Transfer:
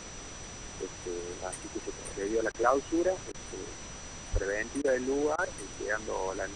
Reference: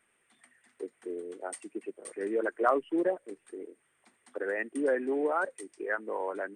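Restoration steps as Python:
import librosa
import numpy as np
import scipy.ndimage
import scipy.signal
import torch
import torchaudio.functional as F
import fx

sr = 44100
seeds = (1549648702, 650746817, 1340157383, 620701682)

y = fx.notch(x, sr, hz=5900.0, q=30.0)
y = fx.highpass(y, sr, hz=140.0, slope=24, at=(4.32, 4.44), fade=0.02)
y = fx.fix_interpolate(y, sr, at_s=(2.52, 3.32, 4.82, 5.36), length_ms=22.0)
y = fx.noise_reduce(y, sr, print_start_s=0.0, print_end_s=0.5, reduce_db=28.0)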